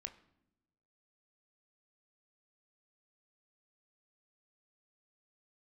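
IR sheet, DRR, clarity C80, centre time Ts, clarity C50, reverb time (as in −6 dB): 6.0 dB, 18.0 dB, 8 ms, 15.5 dB, non-exponential decay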